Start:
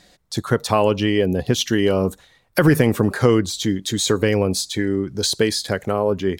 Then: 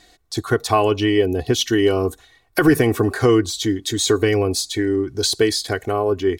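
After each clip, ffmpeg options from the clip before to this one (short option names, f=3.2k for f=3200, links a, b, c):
-af "aecho=1:1:2.7:0.71,volume=-1dB"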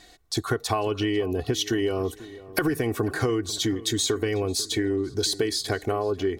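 -filter_complex "[0:a]acompressor=threshold=-22dB:ratio=6,asplit=2[a][b];[b]adelay=494,lowpass=f=2.1k:p=1,volume=-17.5dB,asplit=2[c][d];[d]adelay=494,lowpass=f=2.1k:p=1,volume=0.39,asplit=2[e][f];[f]adelay=494,lowpass=f=2.1k:p=1,volume=0.39[g];[a][c][e][g]amix=inputs=4:normalize=0"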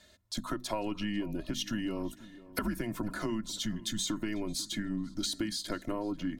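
-af "bandreject=f=60:t=h:w=6,bandreject=f=120:t=h:w=6,bandreject=f=180:t=h:w=6,bandreject=f=240:t=h:w=6,bandreject=f=300:t=h:w=6,bandreject=f=360:t=h:w=6,afreqshift=-110,volume=-8.5dB"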